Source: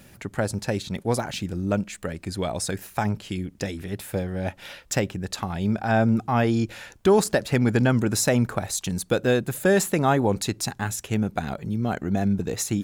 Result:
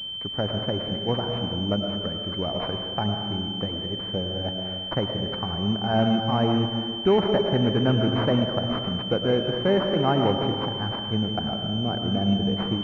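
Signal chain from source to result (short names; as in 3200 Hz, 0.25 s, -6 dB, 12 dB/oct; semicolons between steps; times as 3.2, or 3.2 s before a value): digital reverb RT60 1.9 s, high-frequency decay 0.65×, pre-delay 65 ms, DRR 3.5 dB; pulse-width modulation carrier 3100 Hz; gain -2 dB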